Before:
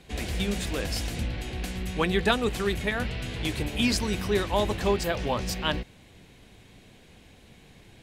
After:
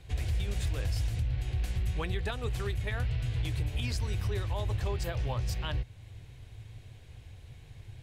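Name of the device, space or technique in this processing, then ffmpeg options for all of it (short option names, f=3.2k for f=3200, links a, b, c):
car stereo with a boomy subwoofer: -af "lowshelf=f=150:t=q:w=3:g=10,alimiter=limit=-18dB:level=0:latency=1:release=280,volume=-5dB"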